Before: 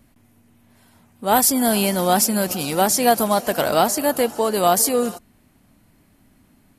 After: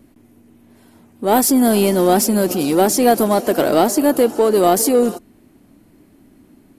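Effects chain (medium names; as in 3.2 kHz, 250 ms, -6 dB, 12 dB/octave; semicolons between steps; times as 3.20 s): peaking EQ 340 Hz +13 dB 1.2 oct; in parallel at -4 dB: saturation -16.5 dBFS, distortion -7 dB; on the sum: trim -3.5 dB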